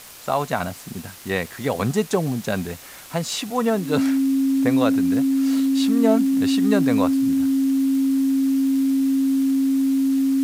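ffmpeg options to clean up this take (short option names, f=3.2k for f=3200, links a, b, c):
-af "adeclick=t=4,bandreject=f=270:w=30,afftdn=nr=29:nf=-38"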